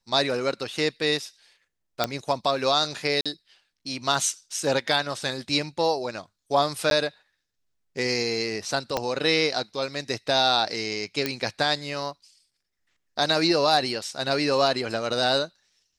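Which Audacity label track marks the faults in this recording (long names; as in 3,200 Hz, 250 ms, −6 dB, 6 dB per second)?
2.040000	2.040000	click −7 dBFS
3.210000	3.260000	drop-out 46 ms
6.900000	6.910000	drop-out 12 ms
8.970000	8.970000	click −10 dBFS
11.260000	11.260000	click −9 dBFS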